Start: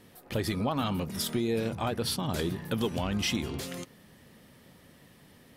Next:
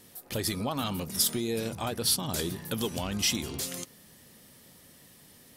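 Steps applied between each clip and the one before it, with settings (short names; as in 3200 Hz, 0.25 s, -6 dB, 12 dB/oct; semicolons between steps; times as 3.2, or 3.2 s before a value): tone controls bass -1 dB, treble +12 dB; gain -2 dB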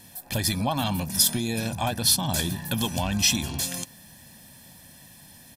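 comb 1.2 ms, depth 70%; gain +4 dB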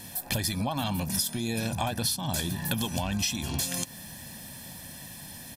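compressor 10:1, threshold -32 dBFS, peak gain reduction 17 dB; gain +6 dB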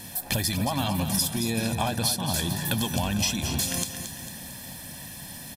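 feedback echo 0.225 s, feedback 48%, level -9 dB; gain +2.5 dB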